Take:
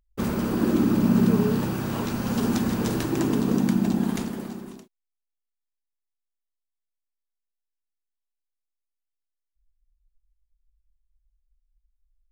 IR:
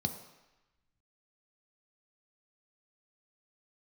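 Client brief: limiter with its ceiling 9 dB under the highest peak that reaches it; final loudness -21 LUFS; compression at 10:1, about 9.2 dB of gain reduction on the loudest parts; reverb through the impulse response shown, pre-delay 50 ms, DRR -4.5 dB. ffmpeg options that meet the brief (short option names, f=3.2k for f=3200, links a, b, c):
-filter_complex "[0:a]acompressor=threshold=-25dB:ratio=10,alimiter=level_in=1.5dB:limit=-24dB:level=0:latency=1,volume=-1.5dB,asplit=2[a][b];[1:a]atrim=start_sample=2205,adelay=50[c];[b][c]afir=irnorm=-1:irlink=0,volume=2dB[d];[a][d]amix=inputs=2:normalize=0,volume=-0.5dB"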